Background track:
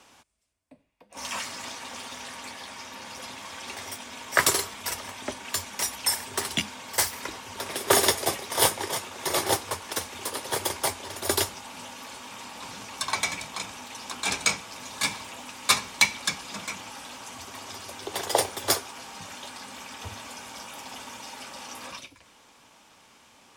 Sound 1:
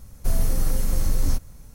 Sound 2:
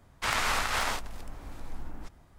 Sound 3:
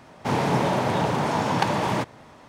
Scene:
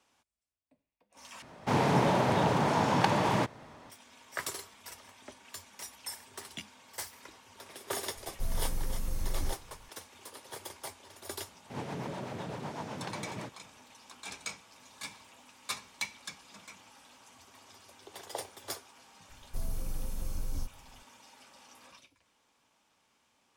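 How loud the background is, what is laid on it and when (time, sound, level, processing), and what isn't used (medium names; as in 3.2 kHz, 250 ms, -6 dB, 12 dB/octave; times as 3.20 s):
background track -16 dB
1.42 s: replace with 3 -3.5 dB
8.15 s: add 1 -12 dB
11.45 s: add 3 -14 dB + rotary cabinet horn 8 Hz
19.29 s: add 1 -14 dB + Butterworth band-stop 2.2 kHz, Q 0.98
not used: 2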